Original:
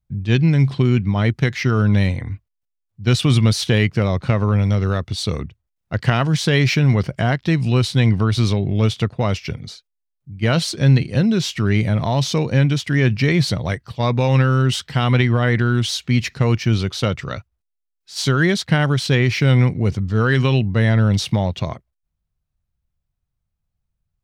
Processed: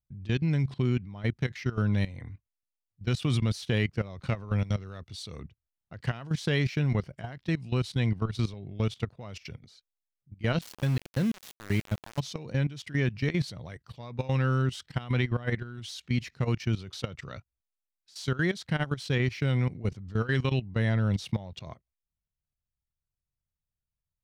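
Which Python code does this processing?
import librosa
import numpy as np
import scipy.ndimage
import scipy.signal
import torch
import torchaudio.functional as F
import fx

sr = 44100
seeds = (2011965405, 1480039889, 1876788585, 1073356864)

y = fx.high_shelf(x, sr, hz=2100.0, db=4.0, at=(4.1, 5.36))
y = fx.level_steps(y, sr, step_db=16)
y = fx.sample_gate(y, sr, floor_db=-25.5, at=(10.61, 12.2))
y = y * librosa.db_to_amplitude(-9.0)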